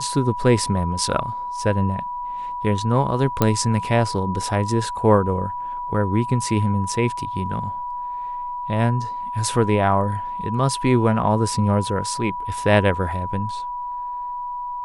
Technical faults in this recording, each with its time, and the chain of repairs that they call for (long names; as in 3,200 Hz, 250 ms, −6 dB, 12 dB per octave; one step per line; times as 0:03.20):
whistle 980 Hz −26 dBFS
0:03.42: click −4 dBFS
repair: click removal
notch filter 980 Hz, Q 30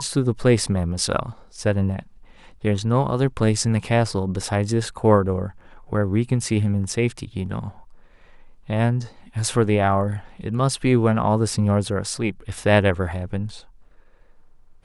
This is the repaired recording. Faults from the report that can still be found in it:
none of them is left